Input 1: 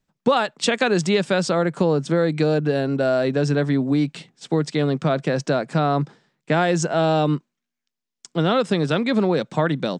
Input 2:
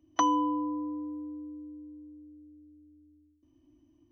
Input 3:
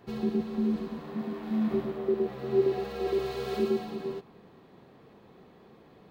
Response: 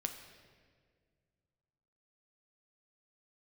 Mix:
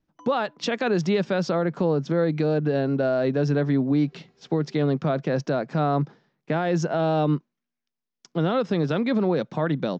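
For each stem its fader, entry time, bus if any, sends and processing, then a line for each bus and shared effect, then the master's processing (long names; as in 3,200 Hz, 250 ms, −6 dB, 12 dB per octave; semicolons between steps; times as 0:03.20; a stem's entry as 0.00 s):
−1.0 dB, 0.00 s, no send, Butterworth low-pass 6,300 Hz 48 dB per octave
−19.5 dB, 0.00 s, no send, automatic ducking −10 dB, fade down 0.55 s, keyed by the first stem
−19.0 dB, 1.00 s, no send, Chebyshev low-pass with heavy ripple 7,200 Hz, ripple 6 dB; high-shelf EQ 3,600 Hz +10 dB; expander for the loud parts 1.5 to 1, over −52 dBFS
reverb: not used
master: parametric band 4,400 Hz −6 dB 2.8 octaves; brickwall limiter −14 dBFS, peak gain reduction 6.5 dB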